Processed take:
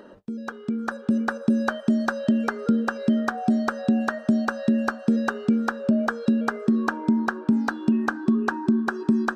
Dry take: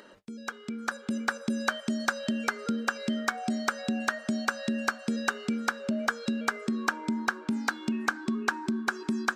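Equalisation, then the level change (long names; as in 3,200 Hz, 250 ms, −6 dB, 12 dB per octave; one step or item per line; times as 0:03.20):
tilt shelving filter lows +8.5 dB, about 1,400 Hz
notch filter 2,200 Hz, Q 6.4
notch filter 7,100 Hz, Q 13
+1.5 dB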